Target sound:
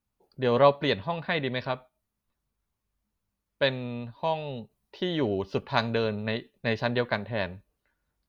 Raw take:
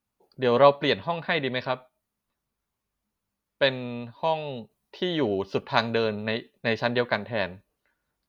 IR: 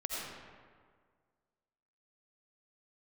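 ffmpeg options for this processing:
-af "lowshelf=frequency=110:gain=11,volume=-3dB"

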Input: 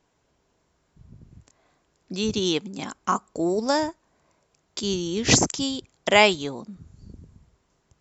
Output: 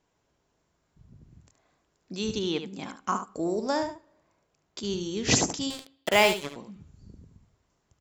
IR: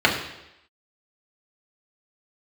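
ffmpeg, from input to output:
-filter_complex "[0:a]asettb=1/sr,asplit=3[link_01][link_02][link_03];[link_01]atrim=end=2.394[link_04];[link_02]atrim=start=2.39:end=3.02,asetpts=PTS-STARTPTS,afade=type=in:duration=0.004:curve=qsin,afade=type=out:start_time=0.626:duration=0.004:curve=qsin,acrossover=split=4000[link_05][link_06];[link_06]acompressor=threshold=-44dB:ratio=4:attack=1:release=60[link_07];[link_05][link_07]amix=inputs=2:normalize=0[link_08];[link_03]atrim=start=3.016[link_09];[link_04][link_08]acrossfade=duration=0.004:curve1=hsin:curve2=qsin[link_10];[link_10][link_09]acrossfade=duration=0.004:curve1=qsin:curve2=hsin,asettb=1/sr,asplit=3[link_11][link_12][link_13];[link_11]atrim=end=3.584[link_14];[link_12]atrim=start=3.58:end=5.01,asetpts=PTS-STARTPTS,afade=type=in:duration=0.004:curve=qsin,afade=type=out:start_time=1.426:duration=0.004:curve=qsin,highshelf=frequency=4800:gain=-6[link_15];[link_13]atrim=start=5.006[link_16];[link_14][link_15]acrossfade=duration=0.004:curve1=hsin:curve2=qsin[link_17];[link_17][link_16]acrossfade=duration=0.004:curve1=qsin:curve2=hsin,asettb=1/sr,asplit=3[link_18][link_19][link_20];[link_18]atrim=end=5.704[link_21];[link_19]atrim=start=5.7:end=6.56,asetpts=PTS-STARTPTS,afade=type=in:duration=0.004:curve=qsin,afade=type=out:start_time=0.856:duration=0.004:curve=qsin,acrusher=bits=3:mix=0:aa=0.5[link_22];[link_20]atrim=start=6.556[link_23];[link_21][link_22]acrossfade=duration=0.004:curve1=hsin:curve2=qsin[link_24];[link_24][link_23]acrossfade=duration=0.004:curve1=qsin:curve2=hsin,aecho=1:1:73:0.355,asplit=2[link_25][link_26];[1:a]atrim=start_sample=2205,adelay=13[link_27];[link_26][link_27]afir=irnorm=-1:irlink=0,volume=-38.5dB[link_28];[link_25][link_28]amix=inputs=2:normalize=0,volume=-5dB"

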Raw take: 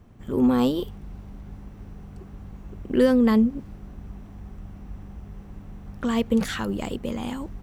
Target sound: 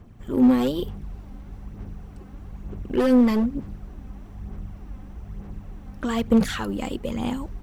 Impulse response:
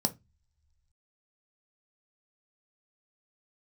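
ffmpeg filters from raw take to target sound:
-af "asoftclip=type=hard:threshold=-15.5dB,aphaser=in_gain=1:out_gain=1:delay=3.9:decay=0.42:speed=1.1:type=sinusoidal"

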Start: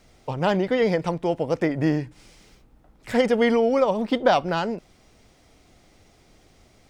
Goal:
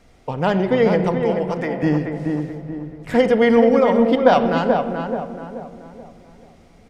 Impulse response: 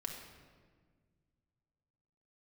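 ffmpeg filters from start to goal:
-filter_complex "[0:a]asettb=1/sr,asplit=3[link_01][link_02][link_03];[link_01]atrim=end=1.234[link_04];[link_02]atrim=start=1.23:end=1.83,asetpts=PTS-STARTPTS,afade=type=in:duration=0.004:curve=qsin,afade=type=out:start_time=0.596:duration=0.004:curve=qsin,highpass=frequency=730:poles=1[link_05];[link_03]atrim=start=1.826[link_06];[link_04][link_05]acrossfade=duration=0.004:curve1=hsin:curve2=qsin[link_07];[link_07][link_06]acrossfade=duration=0.004:curve1=qsin:curve2=hsin,asplit=2[link_08][link_09];[link_09]adelay=431,lowpass=frequency=1600:poles=1,volume=-4.5dB,asplit=2[link_10][link_11];[link_11]adelay=431,lowpass=frequency=1600:poles=1,volume=0.43,asplit=2[link_12][link_13];[link_13]adelay=431,lowpass=frequency=1600:poles=1,volume=0.43,asplit=2[link_14][link_15];[link_15]adelay=431,lowpass=frequency=1600:poles=1,volume=0.43,asplit=2[link_16][link_17];[link_17]adelay=431,lowpass=frequency=1600:poles=1,volume=0.43[link_18];[link_08][link_10][link_12][link_14][link_16][link_18]amix=inputs=6:normalize=0,asplit=2[link_19][link_20];[1:a]atrim=start_sample=2205,lowpass=3200[link_21];[link_20][link_21]afir=irnorm=-1:irlink=0,volume=-0.5dB[link_22];[link_19][link_22]amix=inputs=2:normalize=0,aresample=32000,aresample=44100,volume=-1dB"

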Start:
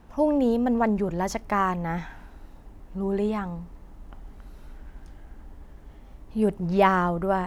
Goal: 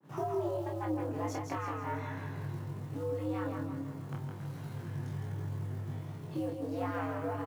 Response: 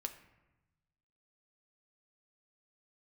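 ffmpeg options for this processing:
-filter_complex "[0:a]acompressor=threshold=-36dB:ratio=20,aeval=exprs='(tanh(28.2*val(0)+0.6)-tanh(0.6))/28.2':channel_layout=same,acontrast=80,agate=range=-33dB:threshold=-41dB:ratio=3:detection=peak,asplit=2[link_01][link_02];[link_02]aecho=0:1:162|324|486|648|810:0.562|0.242|0.104|0.0447|0.0192[link_03];[link_01][link_03]amix=inputs=2:normalize=0,acrusher=bits=7:mode=log:mix=0:aa=0.000001,asplit=2[link_04][link_05];[link_05]adelay=28,volume=-4dB[link_06];[link_04][link_06]amix=inputs=2:normalize=0,flanger=delay=18:depth=2.6:speed=1.3,afreqshift=100,adynamicequalizer=threshold=0.00316:dfrequency=2200:dqfactor=0.7:tfrequency=2200:tqfactor=0.7:attack=5:release=100:ratio=0.375:range=1.5:mode=cutabove:tftype=highshelf"

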